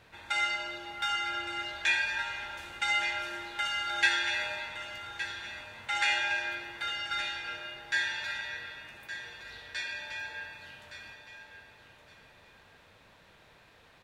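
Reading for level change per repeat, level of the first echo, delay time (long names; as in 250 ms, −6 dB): −13.0 dB, −11.0 dB, 1,166 ms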